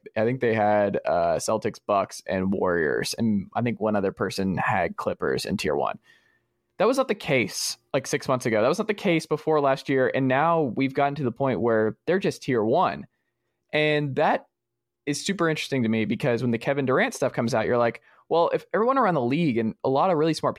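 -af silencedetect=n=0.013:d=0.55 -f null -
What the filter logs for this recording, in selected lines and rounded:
silence_start: 5.95
silence_end: 6.79 | silence_duration: 0.84
silence_start: 13.04
silence_end: 13.73 | silence_duration: 0.69
silence_start: 14.40
silence_end: 15.07 | silence_duration: 0.67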